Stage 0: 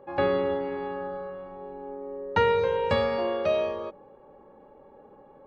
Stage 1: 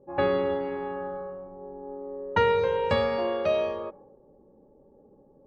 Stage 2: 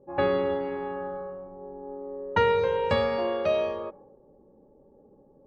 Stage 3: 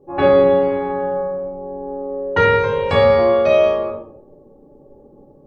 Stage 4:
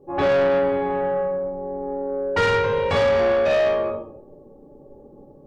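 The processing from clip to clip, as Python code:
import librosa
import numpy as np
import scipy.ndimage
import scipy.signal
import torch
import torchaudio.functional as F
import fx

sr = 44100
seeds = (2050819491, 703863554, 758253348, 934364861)

y1 = fx.env_lowpass(x, sr, base_hz=320.0, full_db=-23.5)
y2 = y1
y3 = fx.room_shoebox(y2, sr, seeds[0], volume_m3=770.0, walls='furnished', distance_m=3.4)
y3 = y3 * librosa.db_to_amplitude(4.5)
y4 = 10.0 ** (-15.5 / 20.0) * np.tanh(y3 / 10.0 ** (-15.5 / 20.0))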